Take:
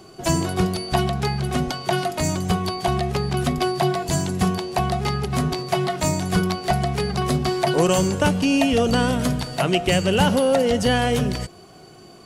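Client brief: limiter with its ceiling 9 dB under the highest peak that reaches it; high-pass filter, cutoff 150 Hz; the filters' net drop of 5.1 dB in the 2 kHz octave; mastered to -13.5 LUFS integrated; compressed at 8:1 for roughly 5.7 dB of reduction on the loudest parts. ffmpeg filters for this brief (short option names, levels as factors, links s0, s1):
-af "highpass=150,equalizer=f=2000:t=o:g=-7.5,acompressor=threshold=0.0891:ratio=8,volume=5.96,alimiter=limit=0.631:level=0:latency=1"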